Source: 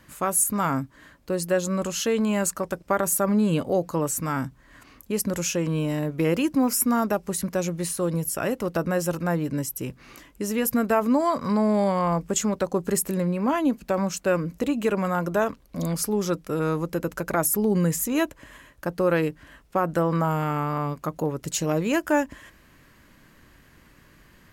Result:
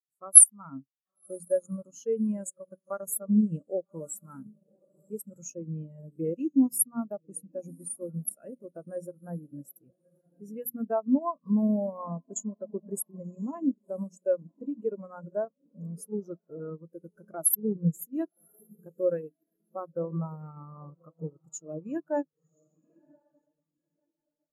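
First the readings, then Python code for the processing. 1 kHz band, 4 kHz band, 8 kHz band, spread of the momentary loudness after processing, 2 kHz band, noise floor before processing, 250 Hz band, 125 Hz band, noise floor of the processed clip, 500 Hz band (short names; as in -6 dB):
-15.0 dB, under -30 dB, +2.5 dB, 18 LU, under -20 dB, -55 dBFS, -6.5 dB, -10.0 dB, -85 dBFS, -8.5 dB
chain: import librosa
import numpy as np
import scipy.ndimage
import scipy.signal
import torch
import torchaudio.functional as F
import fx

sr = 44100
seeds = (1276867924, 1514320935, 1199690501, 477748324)

y = fx.high_shelf(x, sr, hz=5500.0, db=11.5)
y = fx.hum_notches(y, sr, base_hz=60, count=5)
y = fx.echo_diffused(y, sr, ms=1084, feedback_pct=46, wet_db=-10)
y = fx.transient(y, sr, attack_db=0, sustain_db=-8)
y = fx.spectral_expand(y, sr, expansion=2.5)
y = y * librosa.db_to_amplitude(-1.0)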